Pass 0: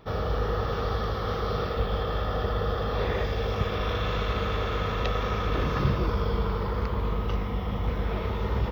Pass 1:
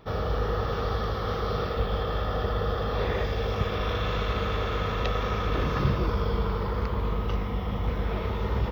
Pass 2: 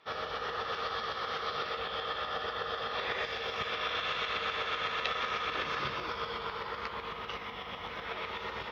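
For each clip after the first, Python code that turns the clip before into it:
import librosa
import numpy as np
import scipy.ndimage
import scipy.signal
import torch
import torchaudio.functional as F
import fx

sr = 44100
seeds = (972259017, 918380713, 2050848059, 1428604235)

y1 = x
y2 = fx.tremolo_shape(y1, sr, shape='saw_up', hz=8.0, depth_pct=55)
y2 = fx.bandpass_q(y2, sr, hz=2700.0, q=0.78)
y2 = fx.doubler(y2, sr, ms=13.0, db=-10.5)
y2 = y2 * librosa.db_to_amplitude(5.0)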